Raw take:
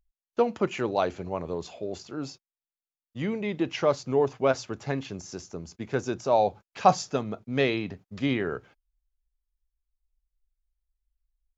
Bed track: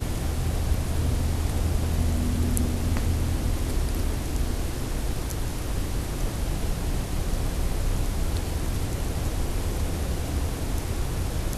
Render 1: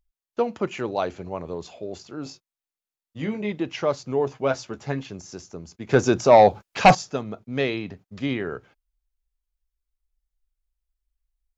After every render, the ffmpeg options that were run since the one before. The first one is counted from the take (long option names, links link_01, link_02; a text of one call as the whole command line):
ffmpeg -i in.wav -filter_complex "[0:a]asettb=1/sr,asplit=3[link_01][link_02][link_03];[link_01]atrim=end=2.244[link_04];[link_02]atrim=start=2.24:end=3.52,asetpts=PTS-STARTPTS,afade=type=in:duration=0.004:curve=qsin,afade=type=out:start_time=1.276:duration=0.004:curve=qsin,asplit=2[link_05][link_06];[link_06]adelay=19,volume=-4.5dB[link_07];[link_05][link_07]amix=inputs=2:normalize=0,atrim=end_sample=56448[link_08];[link_03]atrim=start=3.516[link_09];[link_04][link_08]acrossfade=duration=0.004:curve1=hsin:curve2=qsin[link_10];[link_10][link_09]acrossfade=duration=0.004:curve1=qsin:curve2=hsin,asettb=1/sr,asplit=3[link_11][link_12][link_13];[link_11]atrim=end=4.254[link_14];[link_12]atrim=start=4.25:end=5.02,asetpts=PTS-STARTPTS,afade=type=in:duration=0.004:curve=qsin,afade=type=out:start_time=0.766:duration=0.004:curve=qsin,asplit=2[link_15][link_16];[link_16]adelay=14,volume=-7.5dB[link_17];[link_15][link_17]amix=inputs=2:normalize=0,atrim=end_sample=33957[link_18];[link_13]atrim=start=5.016[link_19];[link_14][link_18]acrossfade=duration=0.004:curve1=hsin:curve2=qsin[link_20];[link_20][link_19]acrossfade=duration=0.004:curve1=qsin:curve2=hsin,asettb=1/sr,asplit=3[link_21][link_22][link_23];[link_21]atrim=end=5.894[link_24];[link_22]atrim=start=5.89:end=6.95,asetpts=PTS-STARTPTS,afade=type=in:duration=0.004:curve=qsin,afade=type=out:start_time=1.056:duration=0.004:curve=qsin,aeval=exprs='0.531*sin(PI/2*2.24*val(0)/0.531)':channel_layout=same[link_25];[link_23]atrim=start=6.946[link_26];[link_24][link_25]acrossfade=duration=0.004:curve1=hsin:curve2=qsin[link_27];[link_27][link_26]acrossfade=duration=0.004:curve1=qsin:curve2=hsin" out.wav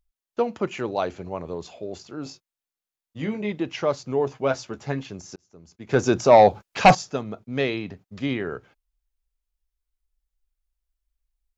ffmpeg -i in.wav -filter_complex "[0:a]asplit=2[link_01][link_02];[link_01]atrim=end=5.36,asetpts=PTS-STARTPTS,afade=type=out:start_time=5.356:duration=0.004:curve=hsin[link_03];[link_02]atrim=start=5.36,asetpts=PTS-STARTPTS,afade=type=in:duration=0.79[link_04];[link_03][link_04]concat=n=2:v=0:a=1" out.wav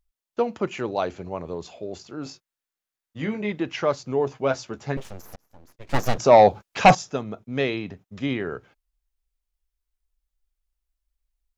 ffmpeg -i in.wav -filter_complex "[0:a]asettb=1/sr,asplit=3[link_01][link_02][link_03];[link_01]atrim=end=2.214[link_04];[link_02]atrim=start=2.21:end=3.94,asetpts=PTS-STARTPTS,afade=type=in:duration=0.004:curve=qsin,afade=type=out:start_time=1.726:duration=0.004:curve=qsin,equalizer=frequency=1600:width=1.5:gain=4.5[link_05];[link_03]atrim=start=3.936[link_06];[link_04][link_05]acrossfade=duration=0.004:curve1=hsin:curve2=qsin[link_07];[link_07][link_06]acrossfade=duration=0.004:curve1=qsin:curve2=hsin,asettb=1/sr,asplit=3[link_08][link_09][link_10];[link_08]atrim=end=4.974[link_11];[link_09]atrim=start=4.97:end=6.18,asetpts=PTS-STARTPTS,afade=type=in:duration=0.004:curve=qsin,afade=type=out:start_time=1.206:duration=0.004:curve=qsin,aeval=exprs='abs(val(0))':channel_layout=same[link_12];[link_10]atrim=start=6.176[link_13];[link_11][link_12]acrossfade=duration=0.004:curve1=hsin:curve2=qsin[link_14];[link_14][link_13]acrossfade=duration=0.004:curve1=qsin:curve2=hsin,asettb=1/sr,asplit=3[link_15][link_16][link_17];[link_15]atrim=end=6.784[link_18];[link_16]atrim=start=6.78:end=8.35,asetpts=PTS-STARTPTS,afade=type=in:duration=0.004:curve=qsin,afade=type=out:start_time=1.566:duration=0.004:curve=qsin,bandreject=frequency=4500:width=9.8[link_19];[link_17]atrim=start=8.346[link_20];[link_18][link_19]acrossfade=duration=0.004:curve1=hsin:curve2=qsin[link_21];[link_21][link_20]acrossfade=duration=0.004:curve1=qsin:curve2=hsin" out.wav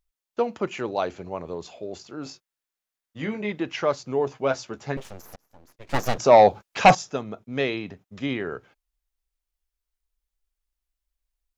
ffmpeg -i in.wav -af "lowshelf=frequency=210:gain=-4.5" out.wav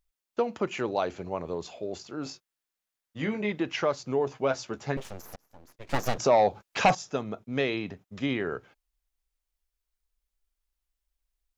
ffmpeg -i in.wav -af "acompressor=threshold=-24dB:ratio=2" out.wav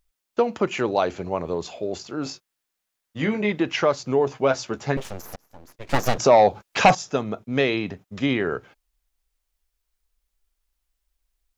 ffmpeg -i in.wav -af "volume=6.5dB" out.wav